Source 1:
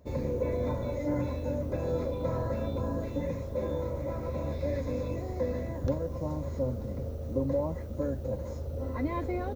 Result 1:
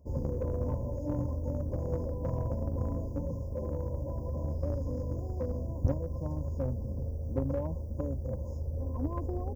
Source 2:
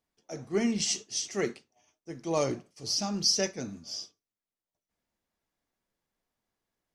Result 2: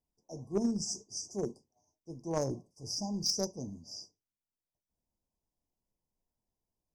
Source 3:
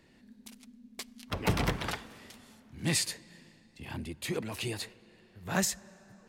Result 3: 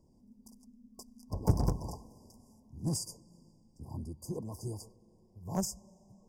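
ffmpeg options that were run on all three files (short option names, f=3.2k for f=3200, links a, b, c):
-filter_complex "[0:a]lowshelf=f=150:g=11.5,afftfilt=real='re*(1-between(b*sr/4096,1100,4700))':imag='im*(1-between(b*sr/4096,1100,4700))':win_size=4096:overlap=0.75,asplit=2[a][b];[b]acrusher=bits=2:mix=0:aa=0.5,volume=-6.5dB[c];[a][c]amix=inputs=2:normalize=0,volume=-7dB"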